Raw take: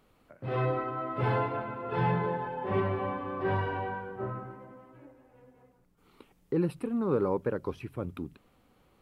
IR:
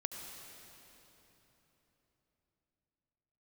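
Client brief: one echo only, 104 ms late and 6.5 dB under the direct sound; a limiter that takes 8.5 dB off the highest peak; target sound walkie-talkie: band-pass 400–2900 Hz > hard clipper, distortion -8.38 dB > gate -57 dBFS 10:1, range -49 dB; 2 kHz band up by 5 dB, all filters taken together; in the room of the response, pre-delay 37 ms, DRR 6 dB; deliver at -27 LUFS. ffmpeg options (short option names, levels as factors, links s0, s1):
-filter_complex "[0:a]equalizer=f=2000:t=o:g=7.5,alimiter=limit=0.0668:level=0:latency=1,aecho=1:1:104:0.473,asplit=2[s0][s1];[1:a]atrim=start_sample=2205,adelay=37[s2];[s1][s2]afir=irnorm=-1:irlink=0,volume=0.501[s3];[s0][s3]amix=inputs=2:normalize=0,highpass=400,lowpass=2900,asoftclip=type=hard:threshold=0.02,agate=range=0.00355:threshold=0.00141:ratio=10,volume=3.35"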